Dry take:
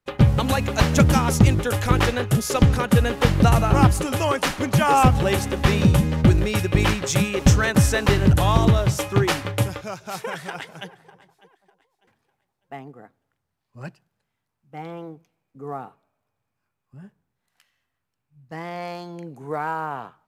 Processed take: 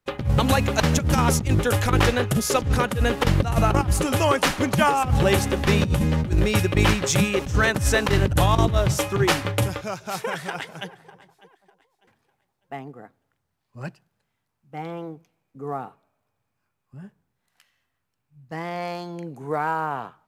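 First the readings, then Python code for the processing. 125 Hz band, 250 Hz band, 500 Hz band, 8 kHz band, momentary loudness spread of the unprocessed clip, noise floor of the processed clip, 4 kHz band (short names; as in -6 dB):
-3.5 dB, -3.0 dB, +0.5 dB, +0.5 dB, 18 LU, -77 dBFS, +0.5 dB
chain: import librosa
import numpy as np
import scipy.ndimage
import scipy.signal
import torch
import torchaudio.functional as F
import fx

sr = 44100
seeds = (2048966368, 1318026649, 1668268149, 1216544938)

y = fx.over_compress(x, sr, threshold_db=-18.0, ratio=-0.5)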